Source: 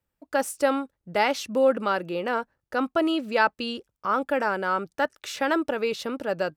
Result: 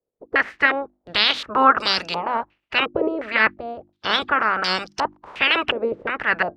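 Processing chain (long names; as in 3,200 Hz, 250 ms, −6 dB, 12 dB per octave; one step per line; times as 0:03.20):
ceiling on every frequency bin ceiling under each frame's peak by 28 dB
in parallel at +3 dB: brickwall limiter −13 dBFS, peak gain reduction 7.5 dB
on the sum: mains-hum notches 50/100/150/200/250/300/350 Hz
low-pass on a step sequencer 2.8 Hz 480–5,300 Hz
level −6 dB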